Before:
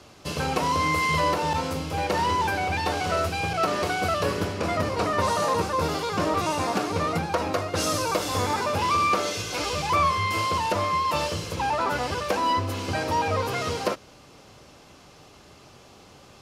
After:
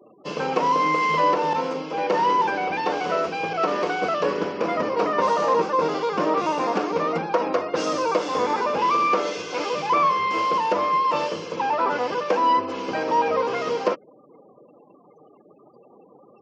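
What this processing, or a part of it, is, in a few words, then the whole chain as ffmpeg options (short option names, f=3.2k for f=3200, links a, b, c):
television speaker: -filter_complex "[0:a]asettb=1/sr,asplit=3[a][b][c];[a]atrim=end=1.664[d];[b]atrim=start=1.66:end=2.07,asetpts=PTS-STARTPTS,afade=t=in:d=0.004:c=qsin,afade=t=out:st=0.406:d=0.004:c=qsin,highpass=170[e];[c]atrim=start=2.066[f];[d][e]acrossfade=d=0.004:c1=hsin:c2=qsin[g];[g][f]acrossfade=d=0.004:c1=qsin:c2=hsin,afftfilt=real='re*gte(hypot(re,im),0.00708)':imag='im*gte(hypot(re,im),0.00708)':win_size=1024:overlap=0.75,lowpass=5.3k,highpass=f=180:w=0.5412,highpass=f=180:w=1.3066,equalizer=f=330:t=q:w=4:g=3,equalizer=f=480:t=q:w=4:g=7,equalizer=f=990:t=q:w=4:g=5,equalizer=f=4k:t=q:w=4:g=-6,lowpass=f=7k:w=0.5412,lowpass=f=7k:w=1.3066"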